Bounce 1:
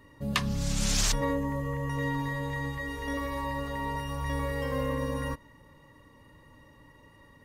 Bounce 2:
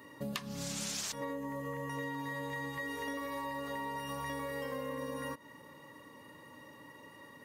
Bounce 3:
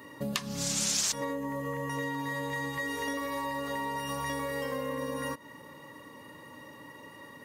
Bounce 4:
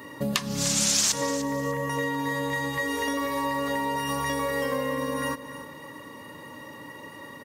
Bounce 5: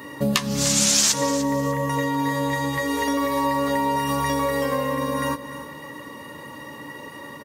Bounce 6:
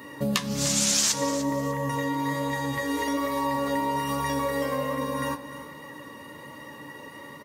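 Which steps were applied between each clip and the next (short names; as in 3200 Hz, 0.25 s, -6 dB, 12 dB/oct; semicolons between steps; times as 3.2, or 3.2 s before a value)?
HPF 210 Hz 12 dB/oct; high shelf 12000 Hz +6.5 dB; compressor 10:1, threshold -40 dBFS, peak gain reduction 17.5 dB; gain +4 dB
dynamic EQ 6700 Hz, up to +6 dB, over -54 dBFS, Q 0.82; gain +5 dB
feedback echo 0.298 s, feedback 26%, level -13.5 dB; gain +6 dB
doubler 14 ms -8.5 dB; gain +4 dB
flange 1.2 Hz, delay 3.7 ms, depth 7.4 ms, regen +84%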